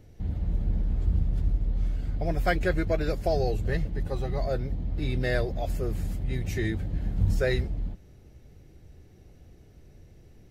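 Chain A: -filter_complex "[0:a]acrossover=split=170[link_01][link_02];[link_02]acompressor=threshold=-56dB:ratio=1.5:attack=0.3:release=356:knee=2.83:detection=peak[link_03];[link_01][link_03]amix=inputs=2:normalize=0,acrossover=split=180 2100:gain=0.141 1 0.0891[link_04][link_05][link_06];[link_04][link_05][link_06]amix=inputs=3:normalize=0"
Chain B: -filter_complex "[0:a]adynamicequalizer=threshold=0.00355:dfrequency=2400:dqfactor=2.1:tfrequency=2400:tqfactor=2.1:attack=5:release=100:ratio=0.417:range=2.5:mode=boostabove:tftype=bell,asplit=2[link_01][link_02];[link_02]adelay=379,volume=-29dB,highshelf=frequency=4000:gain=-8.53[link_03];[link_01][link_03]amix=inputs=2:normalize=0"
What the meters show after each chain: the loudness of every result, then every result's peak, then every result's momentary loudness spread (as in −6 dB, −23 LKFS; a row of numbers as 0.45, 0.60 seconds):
−42.5, −29.0 LKFS; −26.0, −11.0 dBFS; 22, 6 LU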